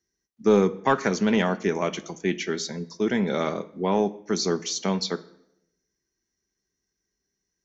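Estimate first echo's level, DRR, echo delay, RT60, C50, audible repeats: no echo, 9.5 dB, no echo, 0.80 s, 18.0 dB, no echo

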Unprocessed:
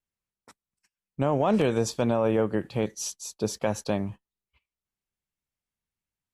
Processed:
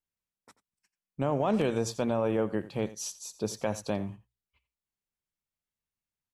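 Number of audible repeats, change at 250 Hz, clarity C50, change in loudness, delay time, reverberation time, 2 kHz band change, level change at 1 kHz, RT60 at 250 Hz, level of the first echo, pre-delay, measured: 1, -4.0 dB, no reverb, -4.0 dB, 87 ms, no reverb, -4.0 dB, -4.0 dB, no reverb, -16.5 dB, no reverb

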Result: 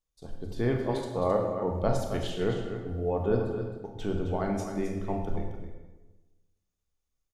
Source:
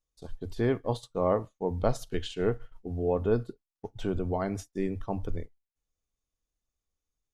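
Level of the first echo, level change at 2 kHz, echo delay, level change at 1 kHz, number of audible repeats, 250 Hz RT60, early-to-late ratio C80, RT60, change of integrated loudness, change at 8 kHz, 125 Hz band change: -9.0 dB, +1.0 dB, 265 ms, +1.5 dB, 1, 1.3 s, 4.5 dB, 1.1 s, +0.5 dB, +1.0 dB, +1.5 dB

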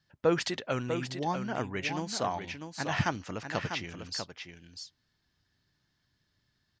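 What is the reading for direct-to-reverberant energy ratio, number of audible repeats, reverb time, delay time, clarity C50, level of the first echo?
no reverb, 1, no reverb, 646 ms, no reverb, -7.5 dB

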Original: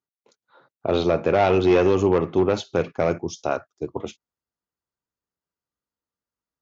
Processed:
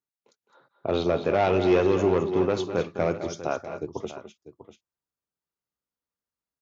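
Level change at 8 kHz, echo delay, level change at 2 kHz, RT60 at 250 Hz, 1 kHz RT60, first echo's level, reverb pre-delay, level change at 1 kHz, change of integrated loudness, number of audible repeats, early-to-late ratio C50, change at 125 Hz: no reading, 209 ms, -3.5 dB, no reverb, no reverb, -10.5 dB, no reverb, -3.5 dB, -3.5 dB, 2, no reverb, -3.5 dB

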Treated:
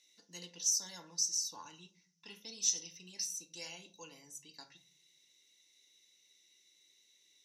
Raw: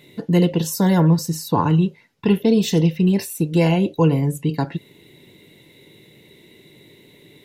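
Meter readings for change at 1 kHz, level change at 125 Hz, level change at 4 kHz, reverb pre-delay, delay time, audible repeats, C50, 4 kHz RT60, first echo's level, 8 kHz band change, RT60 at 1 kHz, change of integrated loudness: -30.0 dB, under -40 dB, -8.5 dB, 3 ms, no echo, no echo, 16.0 dB, 0.25 s, no echo, 0.0 dB, 0.40 s, -16.5 dB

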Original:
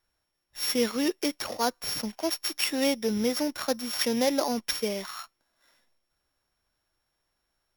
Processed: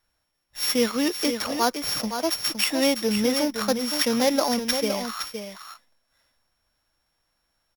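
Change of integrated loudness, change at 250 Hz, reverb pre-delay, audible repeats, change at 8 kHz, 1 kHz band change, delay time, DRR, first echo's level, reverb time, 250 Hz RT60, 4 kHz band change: +4.5 dB, +4.5 dB, no reverb, 1, +4.5 dB, +5.5 dB, 515 ms, no reverb, -8.0 dB, no reverb, no reverb, +5.0 dB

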